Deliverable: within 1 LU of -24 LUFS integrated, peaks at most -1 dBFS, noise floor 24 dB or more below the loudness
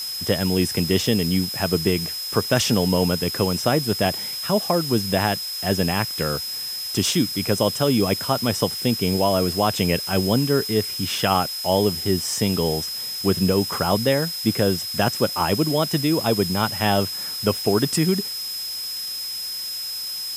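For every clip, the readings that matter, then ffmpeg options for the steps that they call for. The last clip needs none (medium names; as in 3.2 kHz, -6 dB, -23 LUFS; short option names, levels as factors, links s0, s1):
steady tone 5.1 kHz; tone level -28 dBFS; noise floor -30 dBFS; noise floor target -46 dBFS; loudness -21.5 LUFS; peak level -4.0 dBFS; loudness target -24.0 LUFS
-> -af "bandreject=f=5100:w=30"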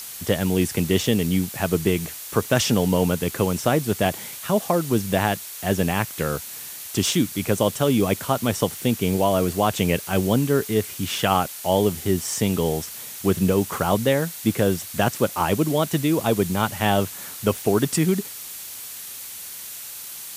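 steady tone not found; noise floor -36 dBFS; noise floor target -47 dBFS
-> -af "afftdn=nr=11:nf=-36"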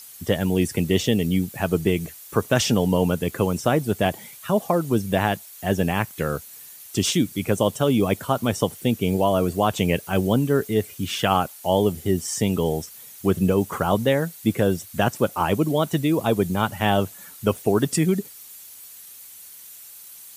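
noise floor -43 dBFS; noise floor target -47 dBFS
-> -af "afftdn=nr=6:nf=-43"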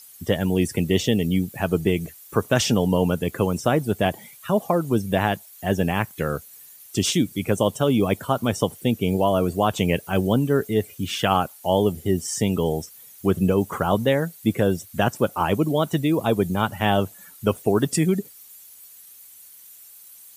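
noise floor -47 dBFS; loudness -23.0 LUFS; peak level -4.5 dBFS; loudness target -24.0 LUFS
-> -af "volume=0.891"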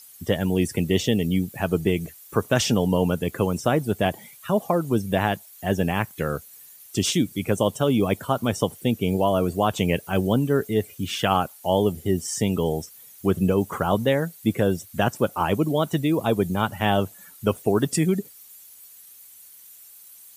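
loudness -24.0 LUFS; peak level -5.5 dBFS; noise floor -48 dBFS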